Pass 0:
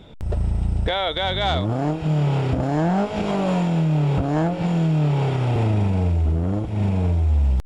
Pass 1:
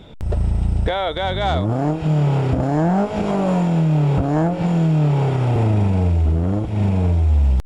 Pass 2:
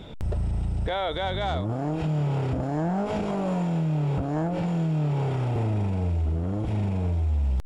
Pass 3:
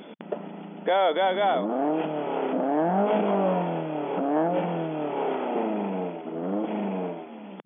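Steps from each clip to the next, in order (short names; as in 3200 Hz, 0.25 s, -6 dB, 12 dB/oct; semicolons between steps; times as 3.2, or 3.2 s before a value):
dynamic EQ 3400 Hz, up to -7 dB, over -40 dBFS, Q 0.78; gain +3 dB
limiter -20 dBFS, peak gain reduction 10 dB
brick-wall FIR band-pass 180–3500 Hz; dynamic EQ 640 Hz, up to +5 dB, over -43 dBFS, Q 0.71; gain +2 dB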